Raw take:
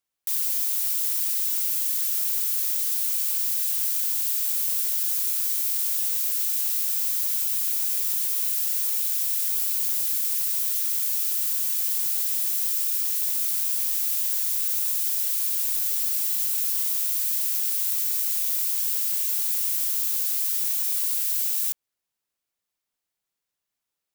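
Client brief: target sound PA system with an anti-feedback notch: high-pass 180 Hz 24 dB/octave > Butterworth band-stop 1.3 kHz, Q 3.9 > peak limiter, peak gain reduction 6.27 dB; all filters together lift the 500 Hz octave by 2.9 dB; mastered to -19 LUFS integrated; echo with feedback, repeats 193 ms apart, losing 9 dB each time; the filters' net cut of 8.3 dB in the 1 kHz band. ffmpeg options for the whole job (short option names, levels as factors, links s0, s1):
-af "highpass=f=180:w=0.5412,highpass=f=180:w=1.3066,asuperstop=centerf=1300:order=8:qfactor=3.9,equalizer=f=500:t=o:g=6.5,equalizer=f=1000:t=o:g=-8.5,aecho=1:1:193|386|579|772:0.355|0.124|0.0435|0.0152,volume=1.78,alimiter=limit=0.237:level=0:latency=1"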